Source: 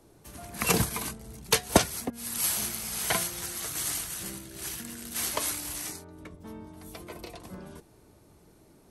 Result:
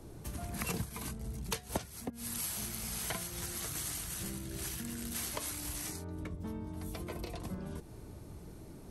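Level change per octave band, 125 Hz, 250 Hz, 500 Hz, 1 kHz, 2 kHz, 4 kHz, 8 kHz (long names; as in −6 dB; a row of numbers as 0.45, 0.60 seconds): −3.0, −5.5, −10.5, −11.0, −10.5, −10.0, −8.5 decibels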